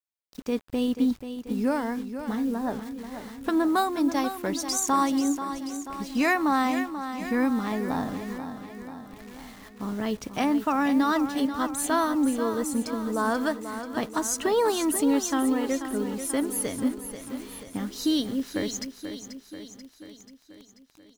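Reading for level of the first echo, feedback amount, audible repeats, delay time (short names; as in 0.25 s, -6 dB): -10.0 dB, 59%, 6, 0.486 s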